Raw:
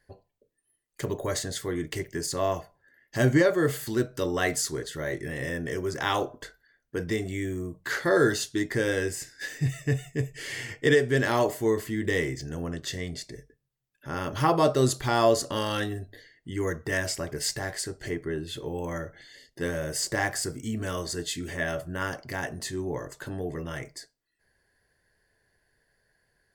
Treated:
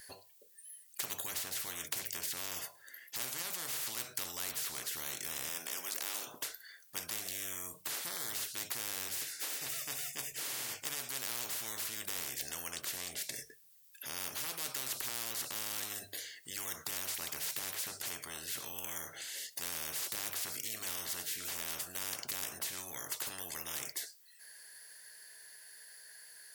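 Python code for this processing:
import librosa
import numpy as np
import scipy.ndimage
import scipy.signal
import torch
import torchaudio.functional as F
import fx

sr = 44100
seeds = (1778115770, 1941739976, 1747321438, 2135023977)

y = fx.highpass(x, sr, hz=500.0, slope=12, at=(5.49, 6.27))
y = np.diff(y, prepend=0.0)
y = fx.hum_notches(y, sr, base_hz=50, count=3)
y = fx.spectral_comp(y, sr, ratio=10.0)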